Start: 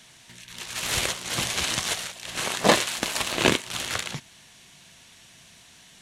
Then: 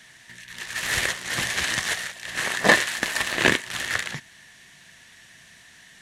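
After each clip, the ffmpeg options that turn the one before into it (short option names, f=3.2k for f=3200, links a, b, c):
-af "equalizer=f=1.8k:w=4:g=14,volume=-1.5dB"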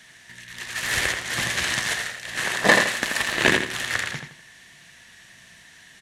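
-filter_complex "[0:a]asplit=2[a][b];[b]adelay=83,lowpass=f=4.5k:p=1,volume=-5dB,asplit=2[c][d];[d]adelay=83,lowpass=f=4.5k:p=1,volume=0.33,asplit=2[e][f];[f]adelay=83,lowpass=f=4.5k:p=1,volume=0.33,asplit=2[g][h];[h]adelay=83,lowpass=f=4.5k:p=1,volume=0.33[i];[a][c][e][g][i]amix=inputs=5:normalize=0"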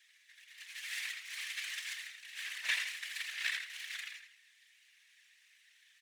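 -af "aeval=exprs='max(val(0),0)':c=same,afftfilt=real='hypot(re,im)*cos(2*PI*random(0))':imag='hypot(re,im)*sin(2*PI*random(1))':win_size=512:overlap=0.75,highpass=f=2.3k:t=q:w=2.4,volume=-8.5dB"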